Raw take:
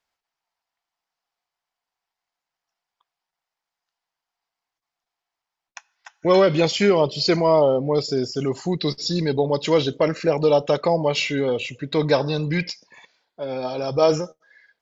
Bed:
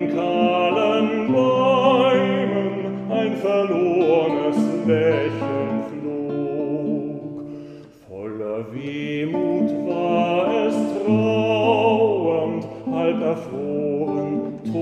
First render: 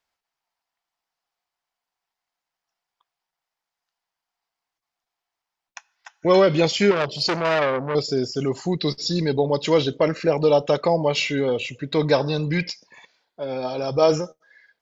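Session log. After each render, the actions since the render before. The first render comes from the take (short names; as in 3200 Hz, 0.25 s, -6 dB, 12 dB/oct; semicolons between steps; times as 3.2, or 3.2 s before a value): 6.91–7.95 core saturation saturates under 1800 Hz; 9.84–10.46 LPF 6600 Hz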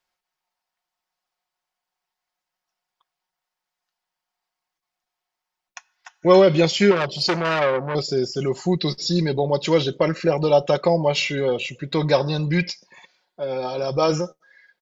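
comb 5.5 ms, depth 46%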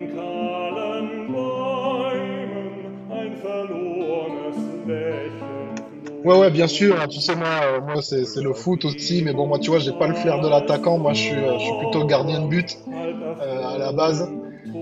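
add bed -7.5 dB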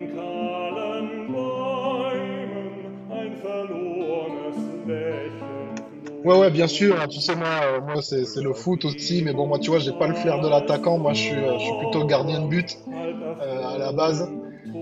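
gain -2 dB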